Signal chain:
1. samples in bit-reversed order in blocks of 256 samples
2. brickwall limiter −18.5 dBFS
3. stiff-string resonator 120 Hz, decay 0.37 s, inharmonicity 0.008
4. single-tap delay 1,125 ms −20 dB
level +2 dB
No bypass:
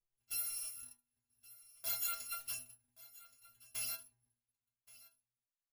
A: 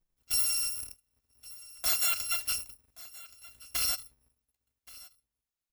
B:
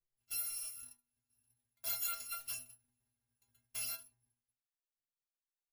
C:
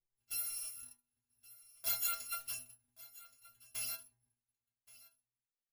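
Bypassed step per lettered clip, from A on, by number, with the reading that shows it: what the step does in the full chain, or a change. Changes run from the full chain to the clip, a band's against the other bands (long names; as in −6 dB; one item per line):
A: 3, 4 kHz band +4.5 dB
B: 4, change in momentary loudness spread −10 LU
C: 2, change in crest factor +1.5 dB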